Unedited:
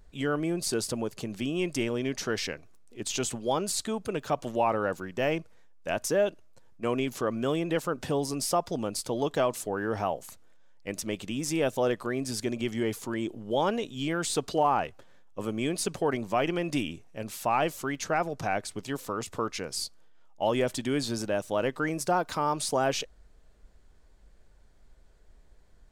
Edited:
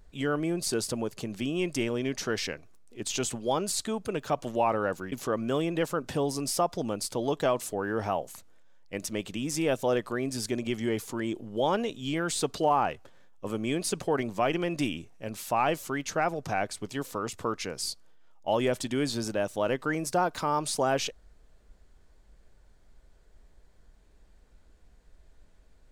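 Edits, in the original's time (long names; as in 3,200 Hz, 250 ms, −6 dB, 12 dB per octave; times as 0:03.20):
0:05.12–0:07.06: remove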